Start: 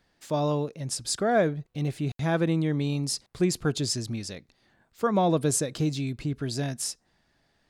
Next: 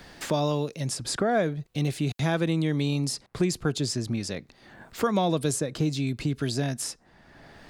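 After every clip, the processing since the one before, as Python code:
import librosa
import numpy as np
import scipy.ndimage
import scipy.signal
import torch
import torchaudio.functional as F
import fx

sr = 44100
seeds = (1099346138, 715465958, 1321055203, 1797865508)

y = fx.band_squash(x, sr, depth_pct=70)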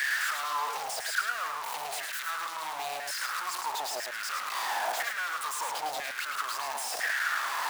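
y = np.sign(x) * np.sqrt(np.mean(np.square(x)))
y = fx.filter_lfo_highpass(y, sr, shape='saw_down', hz=1.0, low_hz=670.0, high_hz=1800.0, q=6.5)
y = y + 10.0 ** (-5.5 / 20.0) * np.pad(y, (int(107 * sr / 1000.0), 0))[:len(y)]
y = y * librosa.db_to_amplitude(-8.0)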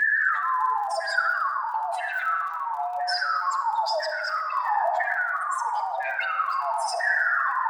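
y = fx.spec_expand(x, sr, power=3.3)
y = fx.dmg_crackle(y, sr, seeds[0], per_s=27.0, level_db=-44.0)
y = fx.room_shoebox(y, sr, seeds[1], volume_m3=3000.0, walls='mixed', distance_m=1.5)
y = y * librosa.db_to_amplitude(6.5)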